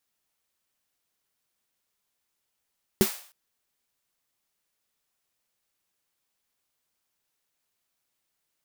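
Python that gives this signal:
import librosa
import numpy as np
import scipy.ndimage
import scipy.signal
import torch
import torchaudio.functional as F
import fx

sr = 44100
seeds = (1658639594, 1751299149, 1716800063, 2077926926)

y = fx.drum_snare(sr, seeds[0], length_s=0.31, hz=210.0, second_hz=380.0, noise_db=-10.0, noise_from_hz=540.0, decay_s=0.1, noise_decay_s=0.49)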